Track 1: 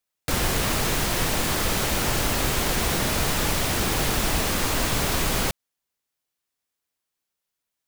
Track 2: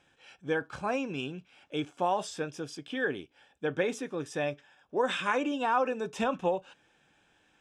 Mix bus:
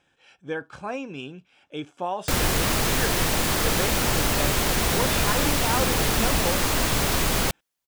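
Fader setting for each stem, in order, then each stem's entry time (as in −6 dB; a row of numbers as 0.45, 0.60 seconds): +1.0, −0.5 decibels; 2.00, 0.00 seconds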